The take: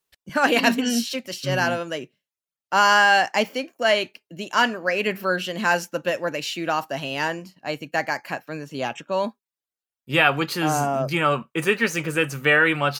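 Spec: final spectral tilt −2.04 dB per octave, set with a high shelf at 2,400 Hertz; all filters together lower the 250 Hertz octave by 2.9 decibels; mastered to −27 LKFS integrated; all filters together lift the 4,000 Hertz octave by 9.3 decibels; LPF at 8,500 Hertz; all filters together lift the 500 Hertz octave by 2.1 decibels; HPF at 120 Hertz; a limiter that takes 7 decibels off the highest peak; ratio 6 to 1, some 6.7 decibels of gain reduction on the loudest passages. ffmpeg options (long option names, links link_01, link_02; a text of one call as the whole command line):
ffmpeg -i in.wav -af "highpass=120,lowpass=8500,equalizer=frequency=250:width_type=o:gain=-4.5,equalizer=frequency=500:width_type=o:gain=3,highshelf=frequency=2400:gain=7.5,equalizer=frequency=4000:width_type=o:gain=6.5,acompressor=threshold=-15dB:ratio=6,volume=-3.5dB,alimiter=limit=-14.5dB:level=0:latency=1" out.wav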